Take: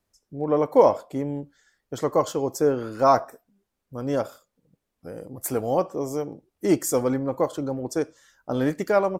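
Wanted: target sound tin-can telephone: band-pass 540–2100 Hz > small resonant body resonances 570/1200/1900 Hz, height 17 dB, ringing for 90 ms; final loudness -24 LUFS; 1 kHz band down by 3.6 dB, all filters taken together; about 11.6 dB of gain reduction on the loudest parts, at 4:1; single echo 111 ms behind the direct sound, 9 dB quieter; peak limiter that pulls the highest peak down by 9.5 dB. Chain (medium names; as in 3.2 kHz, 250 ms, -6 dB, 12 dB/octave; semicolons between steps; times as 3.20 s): peaking EQ 1 kHz -3.5 dB; compression 4:1, threshold -25 dBFS; peak limiter -25 dBFS; band-pass 540–2100 Hz; delay 111 ms -9 dB; small resonant body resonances 570/1200/1900 Hz, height 17 dB, ringing for 90 ms; trim +9.5 dB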